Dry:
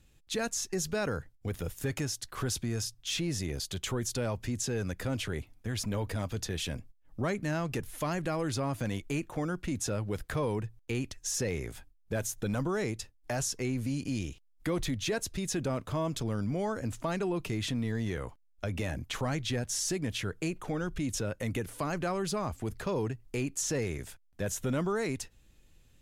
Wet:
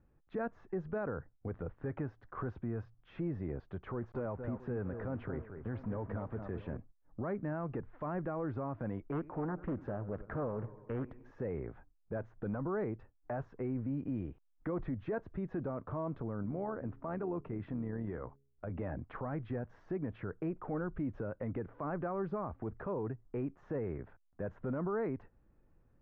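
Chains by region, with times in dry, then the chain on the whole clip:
3.92–6.77 level-crossing sampler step -46.5 dBFS + echo with dull and thin repeats by turns 0.224 s, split 2100 Hz, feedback 57%, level -9 dB
9.12–11.31 dark delay 96 ms, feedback 65%, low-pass 3200 Hz, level -19.5 dB + Doppler distortion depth 0.67 ms
16.43–18.72 de-hum 137.6 Hz, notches 3 + AM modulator 78 Hz, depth 30%
whole clip: LPF 1400 Hz 24 dB/oct; low shelf 130 Hz -6.5 dB; limiter -28 dBFS; gain -1 dB

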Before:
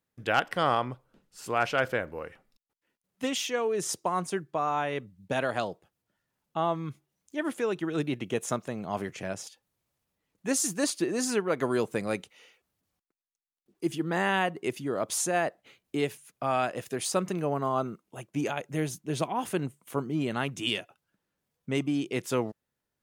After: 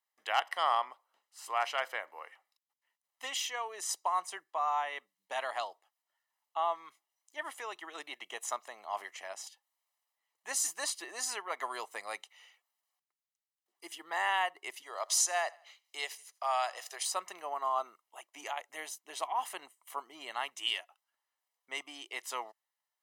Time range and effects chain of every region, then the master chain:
14.82–17.03 HPF 370 Hz 24 dB/oct + bell 5400 Hz +9.5 dB 0.95 oct + feedback echo 83 ms, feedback 42%, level -23.5 dB
whole clip: HPF 580 Hz 24 dB/oct; comb 1 ms, depth 57%; gain -4 dB

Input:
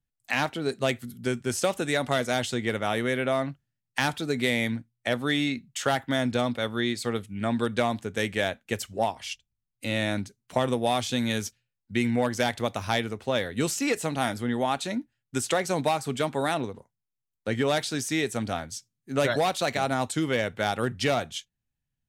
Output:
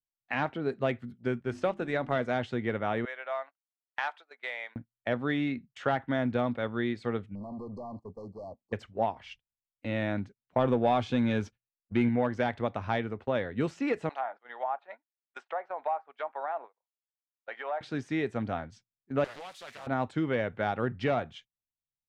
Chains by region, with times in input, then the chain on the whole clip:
1.4–2.16 G.711 law mismatch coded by A + notches 50/100/150/200/250/300/350 Hz
3.05–4.76 HPF 670 Hz 24 dB/oct + upward expander, over -37 dBFS
7.35–8.73 compressor 3:1, threshold -30 dBFS + overloaded stage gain 34.5 dB + brick-wall FIR band-stop 1200–4100 Hz
10.58–12.09 sample leveller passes 1 + notch 1900 Hz, Q 11
14.09–17.81 gate -37 dBFS, range -11 dB + Chebyshev high-pass 700 Hz, order 3 + treble ducked by the level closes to 1100 Hz, closed at -27 dBFS
19.24–19.87 switching spikes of -20 dBFS + pre-emphasis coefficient 0.9 + Doppler distortion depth 0.8 ms
whole clip: gate -40 dBFS, range -18 dB; LPF 1900 Hz 12 dB/oct; gain -2.5 dB

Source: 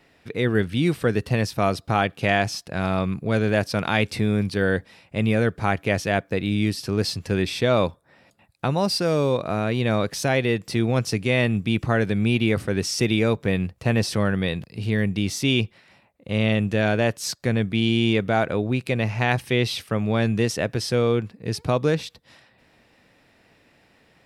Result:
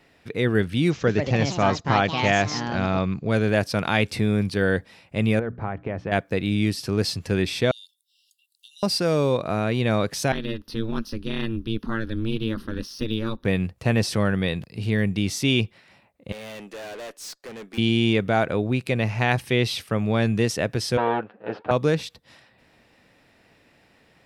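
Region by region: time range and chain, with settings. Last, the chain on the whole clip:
0.9–3.3 echoes that change speed 0.171 s, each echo +4 st, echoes 2, each echo -6 dB + careless resampling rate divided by 3×, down none, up filtered
5.39–6.12 compressor, threshold -22 dBFS + LPF 1400 Hz + notches 60/120/180/240/300 Hz
7.71–8.83 high shelf 9900 Hz +9 dB + compressor 1.5:1, threshold -40 dBFS + brick-wall FIR high-pass 2700 Hz
10.32–13.45 fixed phaser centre 2200 Hz, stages 6 + ring modulator 110 Hz + de-esser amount 85%
16.32–17.78 HPF 290 Hz 24 dB/oct + tube stage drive 34 dB, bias 0.2 + upward expander, over -49 dBFS
20.97–21.71 minimum comb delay 9.4 ms + speaker cabinet 290–2800 Hz, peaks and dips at 500 Hz +7 dB, 760 Hz +5 dB, 1500 Hz +8 dB, 2100 Hz -6 dB
whole clip: dry

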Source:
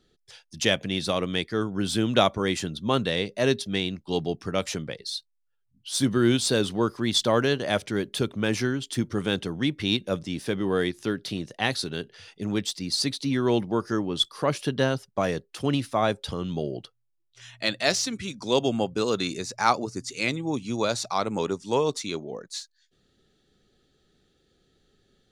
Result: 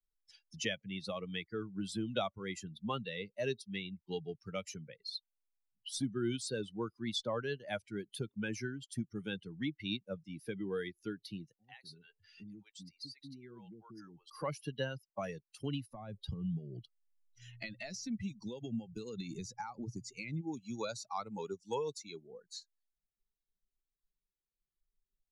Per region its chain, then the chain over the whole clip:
11.52–14.3 compressor 2.5:1, threshold -43 dBFS + bands offset in time lows, highs 0.1 s, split 510 Hz
15.9–20.41 compressor 12:1, threshold -28 dBFS + low shelf 250 Hz +11.5 dB
whole clip: per-bin expansion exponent 2; Chebyshev low-pass 11000 Hz, order 4; three-band squash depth 70%; gain -6 dB

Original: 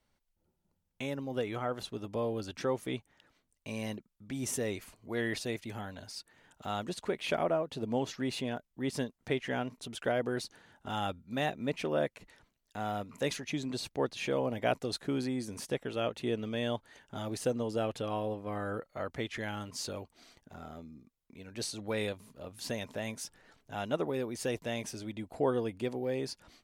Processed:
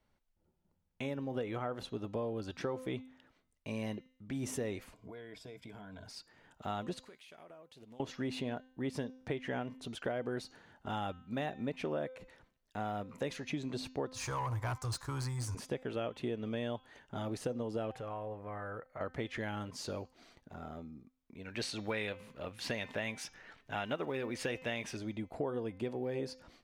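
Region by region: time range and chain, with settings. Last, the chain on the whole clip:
4.94–6.06 ripple EQ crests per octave 1.7, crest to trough 11 dB + compressor 8:1, threshold -46 dBFS
7.02–8 pre-emphasis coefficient 0.9 + compressor 10:1, threshold -50 dBFS + Doppler distortion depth 0.27 ms
14.14–15.55 EQ curve 120 Hz 0 dB, 180 Hz -29 dB, 310 Hz -24 dB, 660 Hz -21 dB, 990 Hz +1 dB, 1900 Hz -13 dB, 3200 Hz -18 dB, 4800 Hz 0 dB, 8100 Hz +5 dB, 13000 Hz +1 dB + sample leveller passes 3
17.91–19.01 EQ curve 130 Hz 0 dB, 250 Hz -8 dB, 540 Hz 0 dB, 2000 Hz +4 dB, 3600 Hz -9 dB, 11000 Hz -1 dB + compressor 2:1, threshold -44 dBFS
21.45–24.97 block floating point 7-bit + bell 2300 Hz +10.5 dB 2 oct
whole clip: high shelf 3900 Hz -10 dB; de-hum 257.8 Hz, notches 28; compressor, threshold -34 dBFS; gain +1 dB

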